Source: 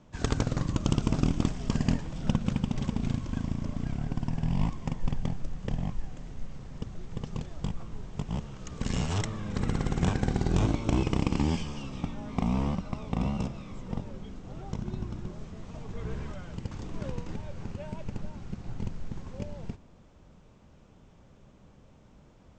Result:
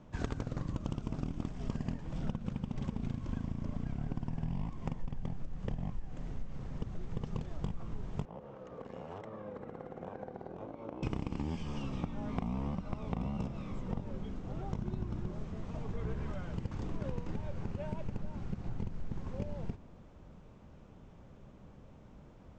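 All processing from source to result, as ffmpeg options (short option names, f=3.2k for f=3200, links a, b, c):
-filter_complex "[0:a]asettb=1/sr,asplit=3[a][b][c];[a]atrim=end=8.254[d];[b]atrim=start=8.25:end=11.03,asetpts=PTS-STARTPTS,afade=t=in:d=0.004:c=qsin,afade=t=out:st=2.776:d=0.004:c=qsin,equalizer=f=520:w=6.4:g=9.5,acompressor=threshold=-34dB:ratio=6:attack=3.2:release=140:knee=1:detection=peak,bandpass=f=670:t=q:w=0.93[e];[c]atrim=start=11.026[f];[d][e]acrossfade=d=0.004:c1=hsin:c2=qsin[g];[g][f]acrossfade=d=0.004:c1=qsin:c2=hsin,highshelf=f=3.1k:g=-9.5,acompressor=threshold=-33dB:ratio=10,volume=1.5dB"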